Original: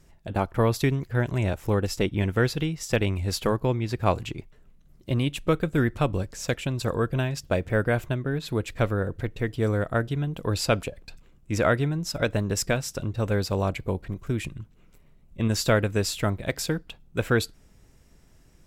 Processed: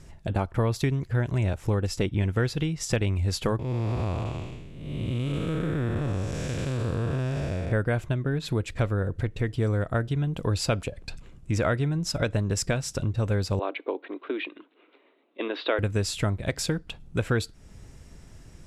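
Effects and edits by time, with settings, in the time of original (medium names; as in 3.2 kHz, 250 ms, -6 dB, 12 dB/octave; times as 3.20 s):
3.59–7.72 s: spectral blur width 424 ms
13.59–15.79 s: Chebyshev band-pass 280–3800 Hz, order 5
whole clip: low-pass 11 kHz 24 dB/octave; peaking EQ 90 Hz +5 dB 1.4 oct; compression 2:1, threshold -37 dBFS; trim +7 dB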